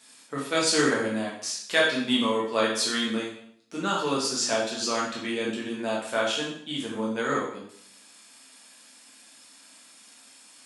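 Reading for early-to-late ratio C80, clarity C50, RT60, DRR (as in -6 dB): 6.5 dB, 3.0 dB, 0.65 s, -5.0 dB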